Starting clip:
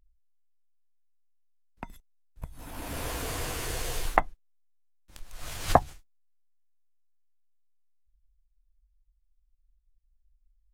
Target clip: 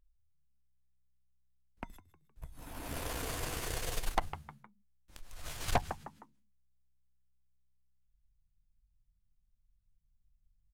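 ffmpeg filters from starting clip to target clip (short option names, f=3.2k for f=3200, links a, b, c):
-filter_complex "[0:a]asplit=4[a][b][c][d];[b]adelay=155,afreqshift=64,volume=-16.5dB[e];[c]adelay=310,afreqshift=128,volume=-24.5dB[f];[d]adelay=465,afreqshift=192,volume=-32.4dB[g];[a][e][f][g]amix=inputs=4:normalize=0,aeval=exprs='(tanh(12.6*val(0)+0.8)-tanh(0.8))/12.6':c=same"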